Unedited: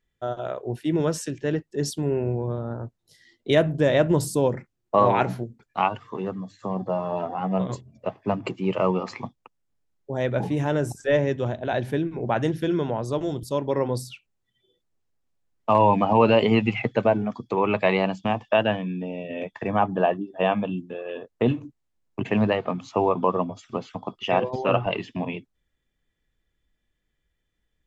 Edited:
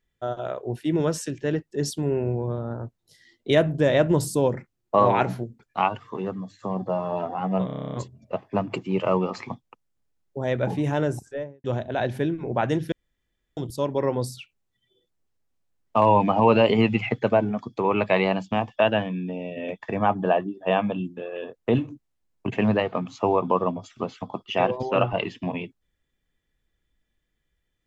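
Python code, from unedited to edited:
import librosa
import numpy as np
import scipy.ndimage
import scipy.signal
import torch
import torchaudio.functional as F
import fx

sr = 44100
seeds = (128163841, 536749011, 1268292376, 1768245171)

y = fx.studio_fade_out(x, sr, start_s=10.71, length_s=0.66)
y = fx.edit(y, sr, fx.stutter(start_s=7.66, slice_s=0.03, count=10),
    fx.room_tone_fill(start_s=12.65, length_s=0.65), tone=tone)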